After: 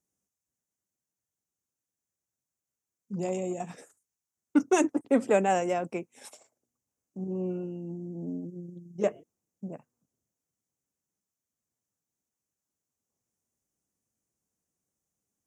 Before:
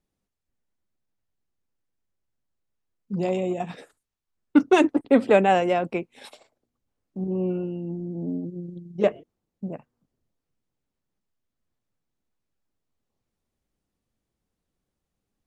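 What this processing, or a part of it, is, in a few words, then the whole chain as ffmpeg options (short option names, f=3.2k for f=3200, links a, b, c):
budget condenser microphone: -af "highpass=87,highshelf=f=5.1k:t=q:w=3:g=8,volume=-6dB"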